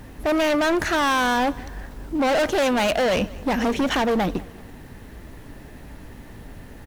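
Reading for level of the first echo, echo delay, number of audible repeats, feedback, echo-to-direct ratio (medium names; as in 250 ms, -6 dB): -22.0 dB, 191 ms, 2, 46%, -21.0 dB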